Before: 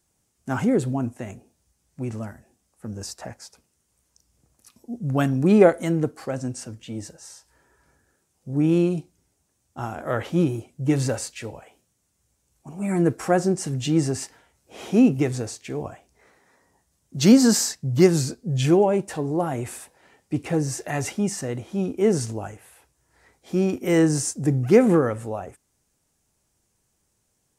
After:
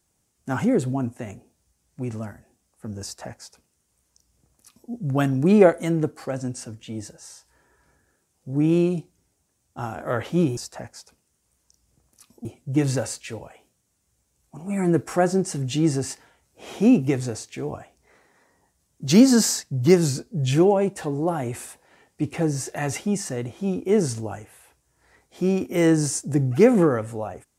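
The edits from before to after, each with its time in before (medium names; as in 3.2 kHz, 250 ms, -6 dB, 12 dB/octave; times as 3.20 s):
3.03–4.91 s: copy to 10.57 s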